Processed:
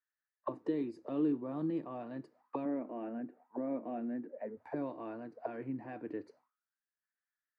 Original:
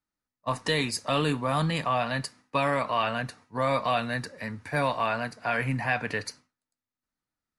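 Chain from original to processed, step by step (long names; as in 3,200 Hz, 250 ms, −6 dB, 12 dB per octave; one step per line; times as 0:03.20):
0:02.65–0:04.57: loudspeaker in its box 190–2,500 Hz, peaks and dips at 240 Hz +9 dB, 720 Hz +3 dB, 1,100 Hz −8 dB
envelope filter 330–1,700 Hz, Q 8.9, down, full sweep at −28.5 dBFS
level +6.5 dB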